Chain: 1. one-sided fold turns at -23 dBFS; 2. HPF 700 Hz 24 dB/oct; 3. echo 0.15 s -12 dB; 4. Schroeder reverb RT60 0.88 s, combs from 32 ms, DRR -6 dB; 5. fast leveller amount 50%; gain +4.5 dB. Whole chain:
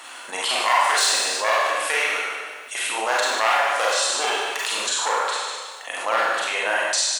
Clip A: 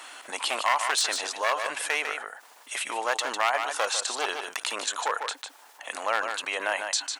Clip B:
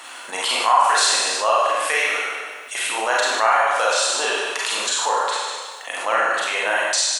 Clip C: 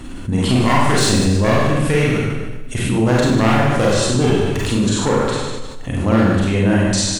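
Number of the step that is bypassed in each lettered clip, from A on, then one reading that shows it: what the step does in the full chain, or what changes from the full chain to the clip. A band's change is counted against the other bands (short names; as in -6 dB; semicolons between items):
4, crest factor change +4.5 dB; 1, distortion -11 dB; 2, 250 Hz band +29.5 dB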